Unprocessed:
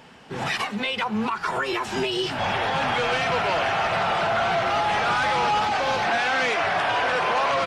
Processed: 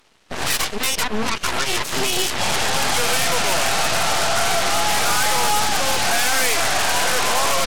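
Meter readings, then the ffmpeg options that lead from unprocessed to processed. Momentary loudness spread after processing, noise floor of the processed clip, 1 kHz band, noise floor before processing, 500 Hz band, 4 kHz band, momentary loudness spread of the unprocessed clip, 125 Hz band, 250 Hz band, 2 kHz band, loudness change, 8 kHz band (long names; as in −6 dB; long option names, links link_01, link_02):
4 LU, −34 dBFS, +0.5 dB, −35 dBFS, +0.5 dB, +8.0 dB, 4 LU, +2.5 dB, +0.5 dB, +2.5 dB, +4.5 dB, +21.0 dB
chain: -af "aeval=exprs='0.188*(cos(1*acos(clip(val(0)/0.188,-1,1)))-cos(1*PI/2))+0.0335*(cos(4*acos(clip(val(0)/0.188,-1,1)))-cos(4*PI/2))+0.0299*(cos(7*acos(clip(val(0)/0.188,-1,1)))-cos(7*PI/2))+0.0473*(cos(8*acos(clip(val(0)/0.188,-1,1)))-cos(8*PI/2))':channel_layout=same,aemphasis=mode=production:type=cd"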